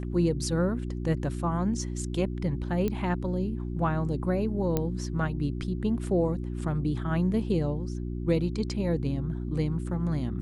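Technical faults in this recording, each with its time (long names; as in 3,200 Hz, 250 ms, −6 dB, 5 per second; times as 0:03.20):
mains hum 60 Hz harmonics 6 −33 dBFS
0:02.88: click −17 dBFS
0:04.77: click −13 dBFS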